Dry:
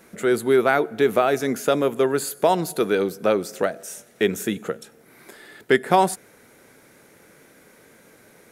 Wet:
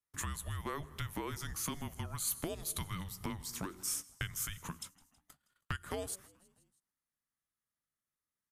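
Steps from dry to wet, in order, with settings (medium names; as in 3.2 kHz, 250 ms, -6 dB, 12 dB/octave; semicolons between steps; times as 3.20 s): gate -40 dBFS, range -39 dB; compression 6:1, threshold -29 dBFS, peak gain reduction 16.5 dB; tilt EQ +2.5 dB/octave; frequency-shifting echo 161 ms, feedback 62%, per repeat -77 Hz, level -23.5 dB; frequency shift -300 Hz; trim -6.5 dB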